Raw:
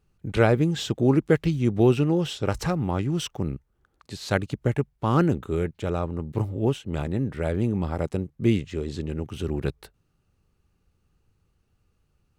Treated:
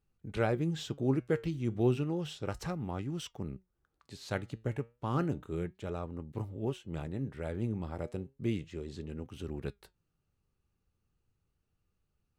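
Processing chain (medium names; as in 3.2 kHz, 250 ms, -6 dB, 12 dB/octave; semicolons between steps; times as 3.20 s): flange 0.32 Hz, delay 3.5 ms, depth 5.8 ms, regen +82%; trim -6.5 dB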